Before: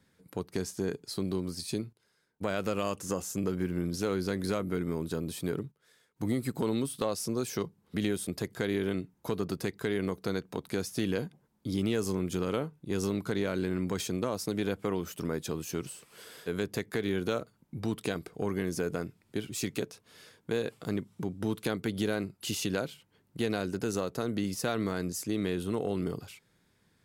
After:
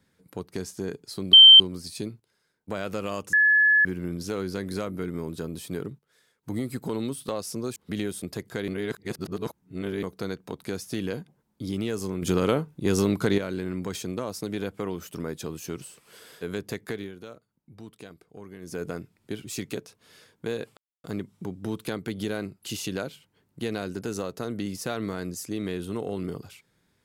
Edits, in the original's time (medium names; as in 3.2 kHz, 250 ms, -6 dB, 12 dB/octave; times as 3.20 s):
1.33 s: add tone 3.12 kHz -6.5 dBFS 0.27 s
3.06–3.58 s: bleep 1.71 kHz -15.5 dBFS
7.49–7.81 s: delete
8.73–10.08 s: reverse
12.27–13.43 s: gain +8 dB
16.94–18.88 s: dip -12 dB, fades 0.23 s
20.82 s: insert silence 0.27 s